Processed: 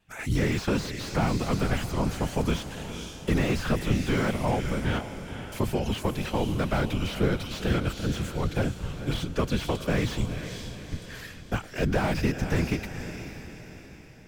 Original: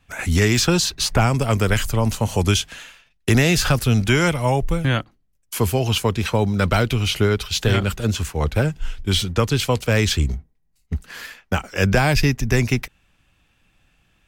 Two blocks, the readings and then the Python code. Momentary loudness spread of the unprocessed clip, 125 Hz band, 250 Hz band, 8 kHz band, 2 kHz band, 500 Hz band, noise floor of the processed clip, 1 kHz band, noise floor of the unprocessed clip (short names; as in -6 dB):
11 LU, -9.0 dB, -5.5 dB, -14.5 dB, -10.0 dB, -7.5 dB, -45 dBFS, -7.5 dB, -64 dBFS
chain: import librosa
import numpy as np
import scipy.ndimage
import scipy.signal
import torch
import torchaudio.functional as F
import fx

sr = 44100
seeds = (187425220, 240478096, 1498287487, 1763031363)

y = fx.whisperise(x, sr, seeds[0])
y = fx.echo_diffused(y, sr, ms=482, feedback_pct=49, wet_db=-11.0)
y = fx.slew_limit(y, sr, full_power_hz=140.0)
y = F.gain(torch.from_numpy(y), -7.5).numpy()